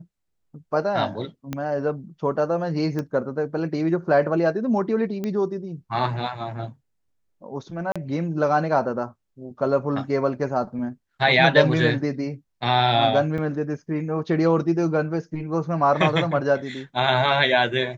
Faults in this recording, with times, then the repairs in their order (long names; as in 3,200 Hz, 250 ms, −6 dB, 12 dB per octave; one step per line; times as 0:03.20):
0:01.53: click −14 dBFS
0:02.99: click −16 dBFS
0:05.24: click −16 dBFS
0:07.92–0:07.96: drop-out 36 ms
0:13.38: drop-out 5 ms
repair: click removal
repair the gap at 0:07.92, 36 ms
repair the gap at 0:13.38, 5 ms